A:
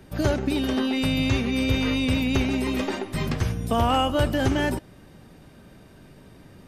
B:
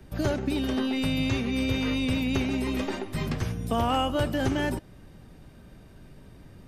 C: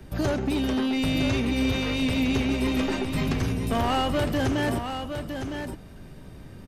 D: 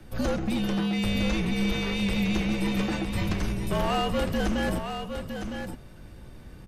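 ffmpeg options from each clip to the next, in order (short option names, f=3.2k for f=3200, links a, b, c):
-filter_complex "[0:a]lowshelf=f=89:g=11,acrossover=split=120|840|6800[a][b][c][d];[a]acompressor=threshold=-31dB:ratio=6[e];[e][b][c][d]amix=inputs=4:normalize=0,volume=-4dB"
-af "asoftclip=type=tanh:threshold=-24dB,aecho=1:1:959:0.422,volume=4.5dB"
-af "afreqshift=-60,volume=-1.5dB"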